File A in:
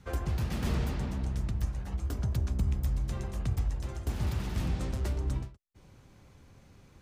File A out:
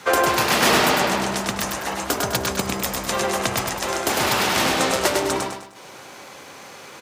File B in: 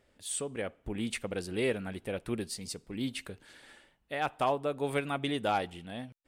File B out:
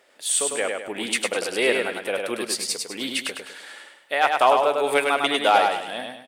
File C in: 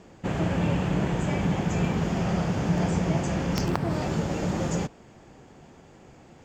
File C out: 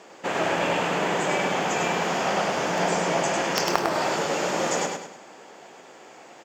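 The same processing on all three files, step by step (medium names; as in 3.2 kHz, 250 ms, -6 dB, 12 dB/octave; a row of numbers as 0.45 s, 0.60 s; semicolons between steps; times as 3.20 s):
high-pass 530 Hz 12 dB/octave; in parallel at -7 dB: one-sided clip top -25 dBFS; on the sum: feedback delay 102 ms, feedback 39%, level -4 dB; peak normalisation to -3 dBFS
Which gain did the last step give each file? +20.5 dB, +10.0 dB, +5.0 dB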